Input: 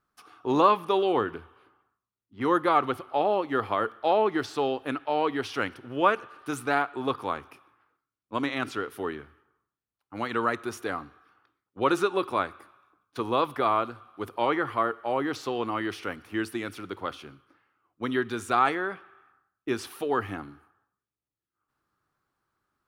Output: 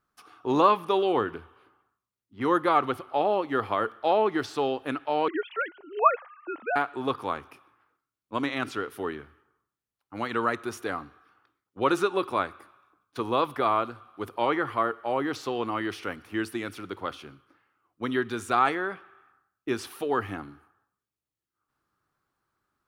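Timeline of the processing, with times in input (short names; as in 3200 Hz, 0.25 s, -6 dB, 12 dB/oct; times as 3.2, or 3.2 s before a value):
5.28–6.76 sine-wave speech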